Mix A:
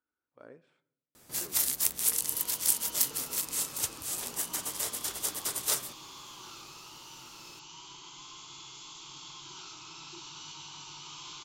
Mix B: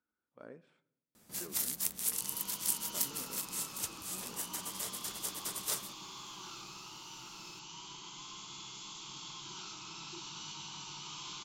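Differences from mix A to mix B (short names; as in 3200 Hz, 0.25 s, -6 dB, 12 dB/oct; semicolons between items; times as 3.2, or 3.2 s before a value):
first sound -6.5 dB; master: add bell 200 Hz +15 dB 0.26 oct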